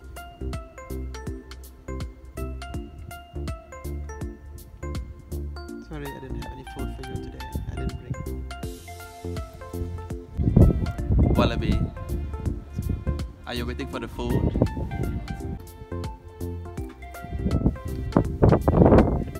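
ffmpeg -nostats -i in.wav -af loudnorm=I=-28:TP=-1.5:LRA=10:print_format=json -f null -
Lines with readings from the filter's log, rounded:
"input_i" : "-25.7",
"input_tp" : "-1.5",
"input_lra" : "13.6",
"input_thresh" : "-36.6",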